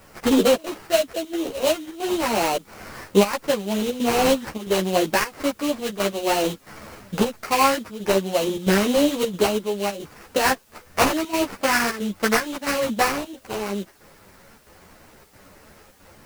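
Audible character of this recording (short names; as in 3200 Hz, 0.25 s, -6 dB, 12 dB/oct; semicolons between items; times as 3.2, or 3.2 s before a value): aliases and images of a low sample rate 3500 Hz, jitter 20%; chopped level 1.5 Hz, depth 65%, duty 85%; a quantiser's noise floor 10-bit, dither triangular; a shimmering, thickened sound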